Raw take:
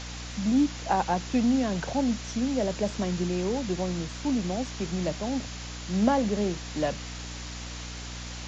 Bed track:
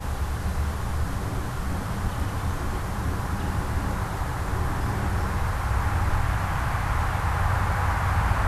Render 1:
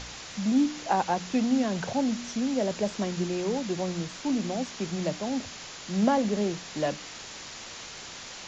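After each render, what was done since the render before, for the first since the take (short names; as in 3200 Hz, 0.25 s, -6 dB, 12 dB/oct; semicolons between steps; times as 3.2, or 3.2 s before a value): de-hum 60 Hz, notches 5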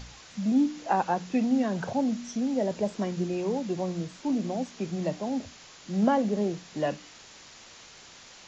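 noise print and reduce 8 dB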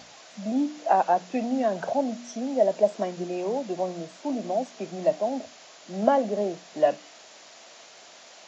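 HPF 260 Hz 12 dB/oct; bell 650 Hz +12 dB 0.41 oct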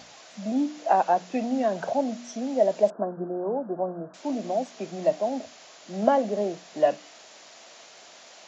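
2.9–4.14 steep low-pass 1600 Hz 96 dB/oct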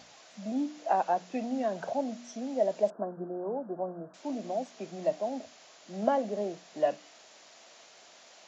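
gain -6 dB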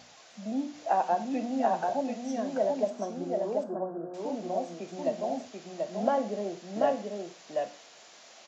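echo 0.736 s -3.5 dB; non-linear reverb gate 0.15 s falling, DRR 9 dB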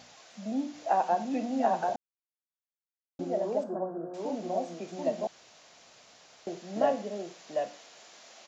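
1.96–3.19 mute; 5.27–6.47 room tone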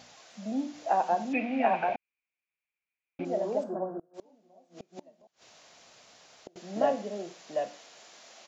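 1.33–3.25 synth low-pass 2400 Hz, resonance Q 13; 3.99–6.56 flipped gate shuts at -30 dBFS, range -28 dB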